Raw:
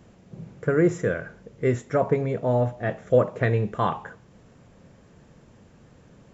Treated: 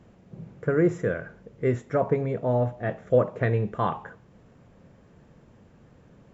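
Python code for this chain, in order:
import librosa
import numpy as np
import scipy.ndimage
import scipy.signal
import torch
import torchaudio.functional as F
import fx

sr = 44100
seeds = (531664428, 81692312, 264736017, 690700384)

y = fx.high_shelf(x, sr, hz=4100.0, db=-9.5)
y = y * librosa.db_to_amplitude(-1.5)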